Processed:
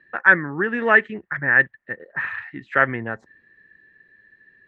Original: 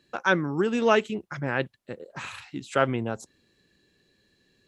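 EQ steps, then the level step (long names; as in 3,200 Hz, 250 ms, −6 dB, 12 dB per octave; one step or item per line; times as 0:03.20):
low-pass with resonance 1,800 Hz, resonance Q 15
−1.0 dB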